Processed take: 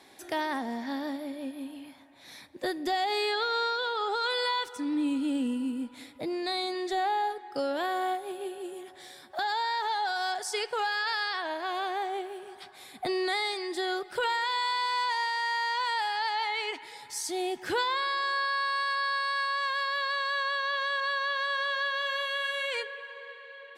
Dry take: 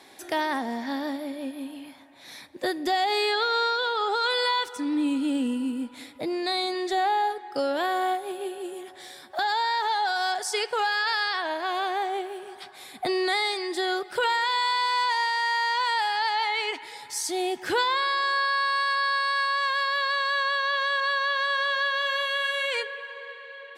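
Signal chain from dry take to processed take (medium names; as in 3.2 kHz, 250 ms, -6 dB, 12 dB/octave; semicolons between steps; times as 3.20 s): bass shelf 170 Hz +5 dB; trim -4.5 dB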